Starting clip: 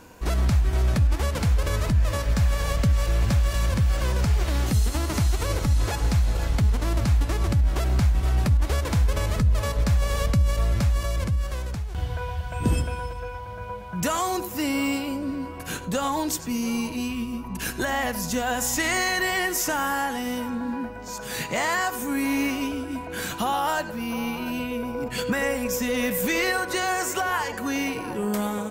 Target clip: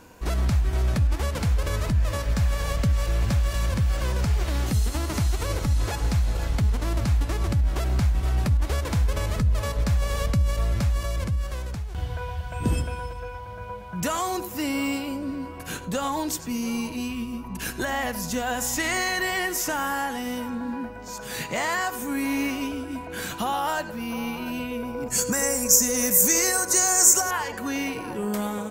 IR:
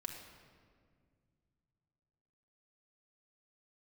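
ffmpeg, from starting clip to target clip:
-filter_complex "[0:a]asettb=1/sr,asplit=3[link_01][link_02][link_03];[link_01]atrim=end=25.084[link_04];[link_02]atrim=start=25.08:end=27.31,asetpts=PTS-STARTPTS,afade=type=in:duration=0.004:curve=qsin,afade=type=out:start_time=2.226:duration=0.004:curve=qsin,highshelf=frequency=4700:width_type=q:width=3:gain=12[link_05];[link_03]atrim=start=27.306[link_06];[link_04][link_05]acrossfade=duration=0.004:curve1=hsin:curve2=qsin[link_07];[link_07][link_06]acrossfade=duration=0.004:curve1=qsin:curve2=hsin,volume=-1.5dB"

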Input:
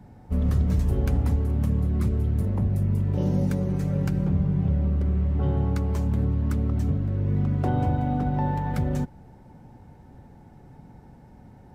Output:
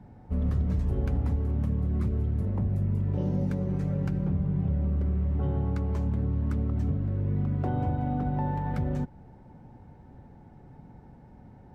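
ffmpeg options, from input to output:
ffmpeg -i in.wav -filter_complex "[0:a]lowpass=frequency=2500:poles=1,asplit=2[link_01][link_02];[link_02]alimiter=limit=-20dB:level=0:latency=1:release=261,volume=2.5dB[link_03];[link_01][link_03]amix=inputs=2:normalize=0,volume=-9dB" out.wav

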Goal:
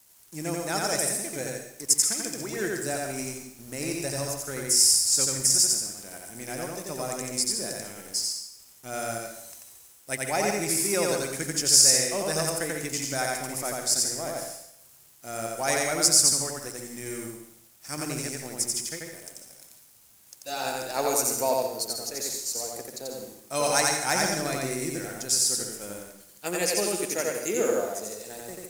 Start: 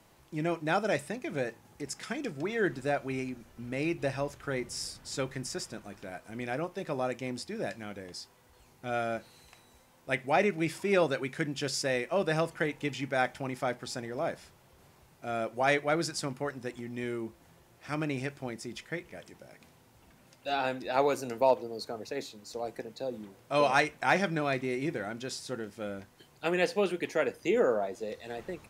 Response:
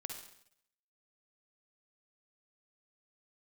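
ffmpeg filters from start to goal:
-filter_complex "[0:a]aexciter=amount=13.9:drive=3.6:freq=5000,aeval=exprs='sgn(val(0))*max(abs(val(0))-0.00473,0)':channel_layout=same,acrusher=bits=7:mode=log:mix=0:aa=0.000001,asplit=2[link_01][link_02];[1:a]atrim=start_sample=2205,adelay=88[link_03];[link_02][link_03]afir=irnorm=-1:irlink=0,volume=2.5dB[link_04];[link_01][link_04]amix=inputs=2:normalize=0,volume=-2dB"

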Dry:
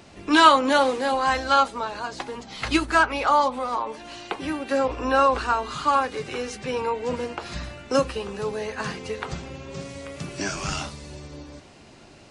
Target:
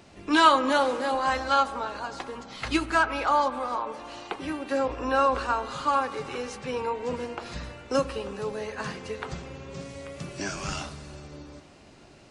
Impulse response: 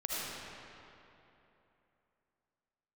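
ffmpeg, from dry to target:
-filter_complex "[0:a]asplit=2[link_01][link_02];[1:a]atrim=start_sample=2205,lowpass=2700[link_03];[link_02][link_03]afir=irnorm=-1:irlink=0,volume=-17.5dB[link_04];[link_01][link_04]amix=inputs=2:normalize=0,volume=-4.5dB"

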